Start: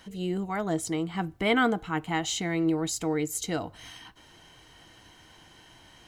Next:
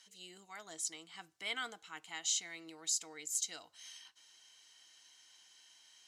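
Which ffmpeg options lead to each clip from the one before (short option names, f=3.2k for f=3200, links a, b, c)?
-af "bandpass=f=6.2k:t=q:w=1.3:csg=0"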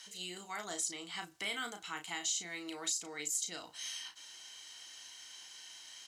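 -filter_complex "[0:a]acrossover=split=450|8000[a][b][c];[a]acompressor=threshold=-60dB:ratio=4[d];[b]acompressor=threshold=-49dB:ratio=4[e];[c]acompressor=threshold=-55dB:ratio=4[f];[d][e][f]amix=inputs=3:normalize=0,asplit=2[g][h];[h]adelay=34,volume=-6.5dB[i];[g][i]amix=inputs=2:normalize=0,volume=10dB"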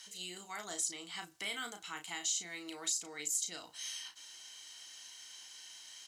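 -af "highshelf=f=4.4k:g=4.5,volume=-2.5dB"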